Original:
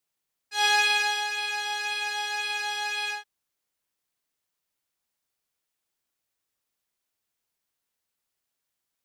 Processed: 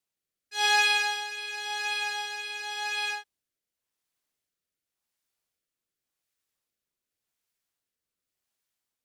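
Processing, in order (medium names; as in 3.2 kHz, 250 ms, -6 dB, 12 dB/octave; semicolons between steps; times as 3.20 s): rotary cabinet horn 0.9 Hz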